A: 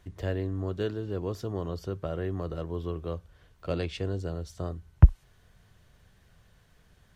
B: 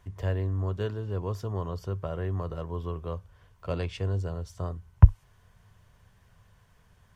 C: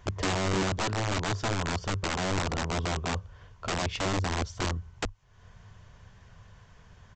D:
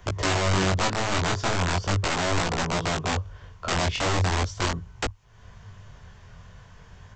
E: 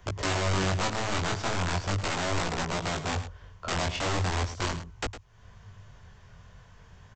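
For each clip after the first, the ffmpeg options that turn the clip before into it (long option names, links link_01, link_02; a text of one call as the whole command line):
ffmpeg -i in.wav -af "equalizer=frequency=100:width_type=o:width=0.33:gain=7,equalizer=frequency=315:width_type=o:width=0.33:gain=-7,equalizer=frequency=1000:width_type=o:width=0.33:gain=8,equalizer=frequency=4000:width_type=o:width=0.33:gain=-5,volume=-1dB" out.wav
ffmpeg -i in.wav -af "acompressor=threshold=-31dB:ratio=4,aresample=16000,aeval=exprs='(mod(33.5*val(0)+1,2)-1)/33.5':channel_layout=same,aresample=44100,volume=7dB" out.wav
ffmpeg -i in.wav -filter_complex "[0:a]acrossover=split=180|390|2700[link_01][link_02][link_03][link_04];[link_02]alimiter=level_in=14dB:limit=-24dB:level=0:latency=1,volume=-14dB[link_05];[link_01][link_05][link_03][link_04]amix=inputs=4:normalize=0,flanger=delay=17.5:depth=6.2:speed=0.39,volume=8.5dB" out.wav
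ffmpeg -i in.wav -af "aecho=1:1:107:0.251,volume=-4.5dB" out.wav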